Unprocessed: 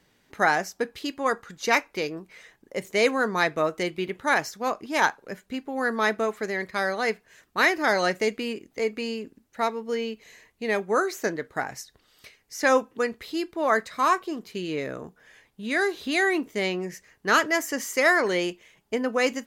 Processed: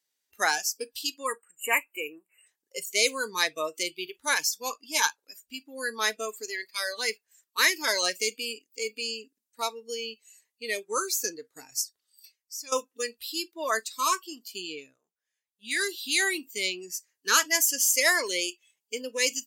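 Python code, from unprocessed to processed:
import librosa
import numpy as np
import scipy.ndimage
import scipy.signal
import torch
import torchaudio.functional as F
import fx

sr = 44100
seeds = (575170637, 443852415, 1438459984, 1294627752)

y = fx.spec_erase(x, sr, start_s=1.26, length_s=1.21, low_hz=3000.0, high_hz=7000.0)
y = fx.edit(y, sr, fx.fade_out_to(start_s=11.75, length_s=0.97, curve='qsin', floor_db=-18.0),
    fx.fade_down_up(start_s=14.68, length_s=1.07, db=-13.0, fade_s=0.28), tone=tone)
y = fx.high_shelf(y, sr, hz=2400.0, db=11.0)
y = fx.noise_reduce_blind(y, sr, reduce_db=20)
y = fx.bass_treble(y, sr, bass_db=-15, treble_db=9)
y = y * 10.0 ** (-6.5 / 20.0)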